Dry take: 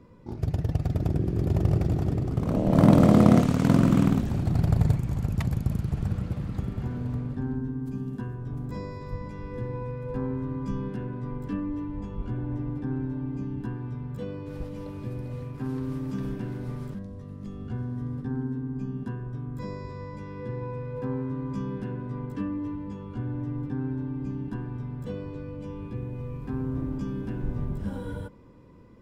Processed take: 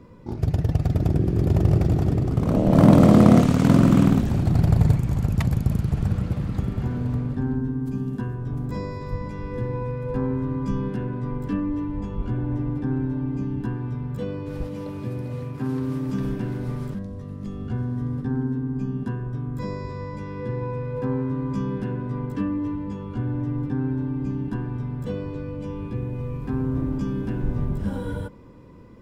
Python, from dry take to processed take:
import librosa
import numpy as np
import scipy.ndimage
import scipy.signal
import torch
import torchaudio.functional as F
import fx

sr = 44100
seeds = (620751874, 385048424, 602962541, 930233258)

p1 = fx.highpass(x, sr, hz=91.0, slope=12, at=(14.67, 16.09))
p2 = 10.0 ** (-16.5 / 20.0) * np.tanh(p1 / 10.0 ** (-16.5 / 20.0))
p3 = p1 + (p2 * librosa.db_to_amplitude(-3.5))
y = p3 * librosa.db_to_amplitude(1.0)